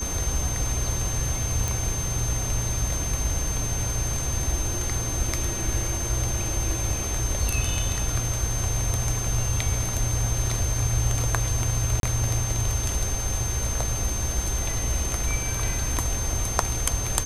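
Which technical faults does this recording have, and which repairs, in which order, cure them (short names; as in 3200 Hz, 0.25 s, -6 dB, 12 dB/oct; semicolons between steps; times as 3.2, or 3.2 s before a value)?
tone 6300 Hz -30 dBFS
1.68 pop
12–12.03 gap 32 ms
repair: de-click; notch 6300 Hz, Q 30; interpolate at 12, 32 ms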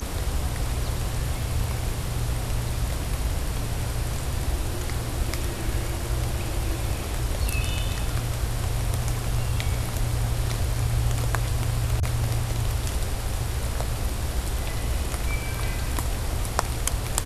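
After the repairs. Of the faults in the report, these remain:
none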